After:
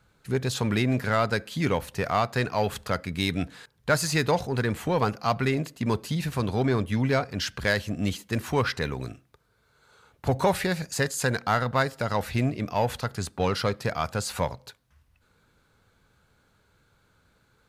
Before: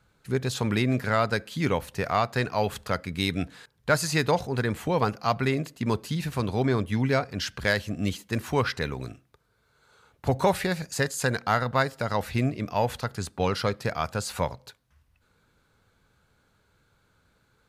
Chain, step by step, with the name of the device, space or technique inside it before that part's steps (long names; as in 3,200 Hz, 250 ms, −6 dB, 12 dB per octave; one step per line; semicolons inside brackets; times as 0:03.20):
parallel distortion (in parallel at −7.5 dB: hard clipping −26.5 dBFS, distortion −6 dB)
on the sum: level −1.5 dB